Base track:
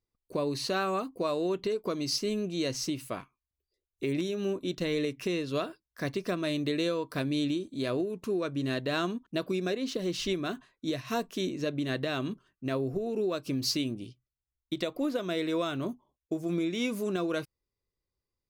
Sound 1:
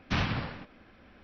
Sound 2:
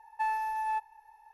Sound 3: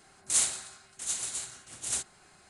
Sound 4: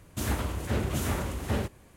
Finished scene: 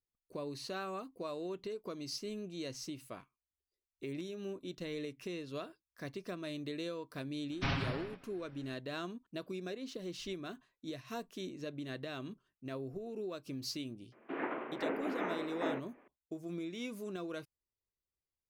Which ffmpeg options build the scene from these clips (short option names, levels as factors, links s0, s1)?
-filter_complex "[0:a]volume=0.282[s0];[1:a]aecho=1:1:7.3:0.64[s1];[4:a]highpass=f=210:t=q:w=0.5412,highpass=f=210:t=q:w=1.307,lowpass=f=2400:t=q:w=0.5176,lowpass=f=2400:t=q:w=0.7071,lowpass=f=2400:t=q:w=1.932,afreqshift=57[s2];[s1]atrim=end=1.23,asetpts=PTS-STARTPTS,volume=0.473,afade=t=in:d=0.004:c=hsin,afade=t=out:st=1.226:d=0.004:c=hsin,adelay=7510[s3];[s2]atrim=end=1.96,asetpts=PTS-STARTPTS,volume=0.668,afade=t=in:d=0.004:c=hsin,afade=t=out:st=1.956:d=0.004:c=hsin,adelay=622692S[s4];[s0][s3][s4]amix=inputs=3:normalize=0"